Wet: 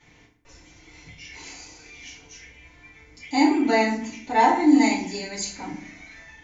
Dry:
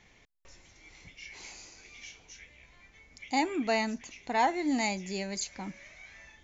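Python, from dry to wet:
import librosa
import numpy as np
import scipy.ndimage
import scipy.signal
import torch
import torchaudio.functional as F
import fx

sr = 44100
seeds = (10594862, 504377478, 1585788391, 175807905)

y = fx.rev_fdn(x, sr, rt60_s=0.57, lf_ratio=1.45, hf_ratio=0.7, size_ms=20.0, drr_db=-10.0)
y = y * librosa.db_to_amplitude(-4.0)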